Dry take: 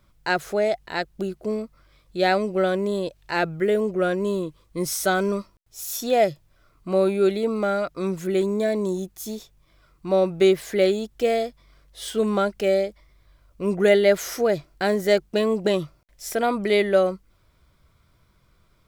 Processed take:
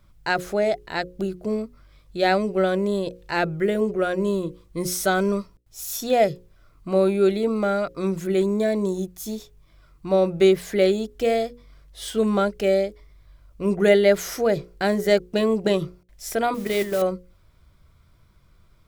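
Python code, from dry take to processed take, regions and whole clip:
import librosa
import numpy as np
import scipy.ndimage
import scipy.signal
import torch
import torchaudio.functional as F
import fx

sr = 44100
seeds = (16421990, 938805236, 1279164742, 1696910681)

y = fx.chain(x, sr, fx.zero_step(step_db=-36.0),
    fx.level_steps(step_db=11),
    fx.mod_noise(seeds[0], snr_db=15), at=(16.54, 17.02))
y = fx.low_shelf(y, sr, hz=160.0, db=7.0)
y = fx.hum_notches(y, sr, base_hz=60, count=9)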